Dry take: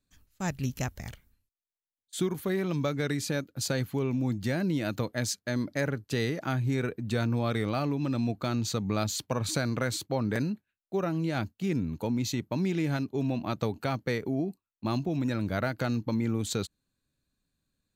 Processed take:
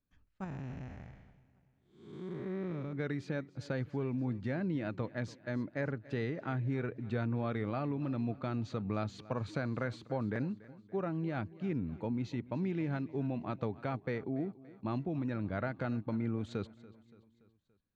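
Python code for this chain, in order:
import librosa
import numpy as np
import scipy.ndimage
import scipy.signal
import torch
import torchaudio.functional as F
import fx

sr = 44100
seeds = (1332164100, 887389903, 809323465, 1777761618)

y = fx.spec_blur(x, sr, span_ms=344.0, at=(0.44, 2.93))
y = scipy.signal.sosfilt(scipy.signal.butter(2, 2200.0, 'lowpass', fs=sr, output='sos'), y)
y = fx.echo_feedback(y, sr, ms=286, feedback_pct=52, wet_db=-19.5)
y = y * librosa.db_to_amplitude(-6.0)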